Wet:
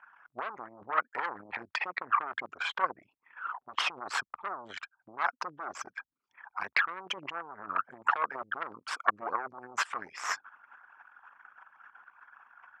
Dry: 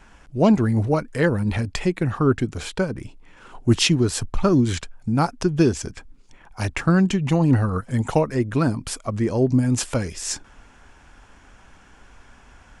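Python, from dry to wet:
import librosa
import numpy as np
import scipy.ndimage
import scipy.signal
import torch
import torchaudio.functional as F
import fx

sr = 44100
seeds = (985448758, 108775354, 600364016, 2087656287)

p1 = fx.envelope_sharpen(x, sr, power=2.0)
p2 = fx.level_steps(p1, sr, step_db=23)
p3 = p1 + (p2 * 10.0 ** (-2.0 / 20.0))
p4 = fx.cheby_harmonics(p3, sr, harmonics=(4, 5, 7, 8), levels_db=(-12, -26, -30, -17), full_scale_db=-3.0)
p5 = fx.over_compress(p4, sr, threshold_db=-17.0, ratio=-0.5)
p6 = fx.ladder_bandpass(p5, sr, hz=1400.0, resonance_pct=50)
y = p6 * 10.0 ** (7.5 / 20.0)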